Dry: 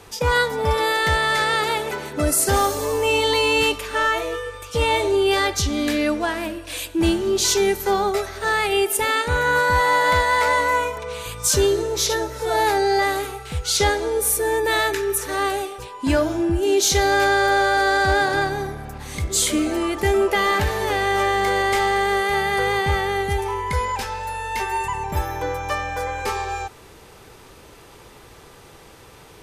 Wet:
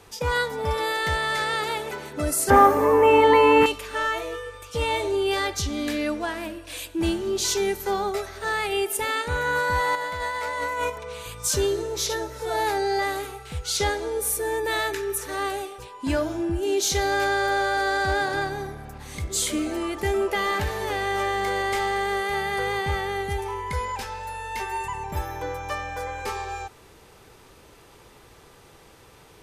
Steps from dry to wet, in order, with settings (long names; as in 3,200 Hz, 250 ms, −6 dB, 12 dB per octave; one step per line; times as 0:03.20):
0:02.50–0:03.66: octave-band graphic EQ 125/250/500/1,000/2,000/4,000/8,000 Hz +3/+12/+5/+11/+10/−11/−8 dB
0:09.95–0:10.90: compressor whose output falls as the input rises −23 dBFS, ratio −1
level −5.5 dB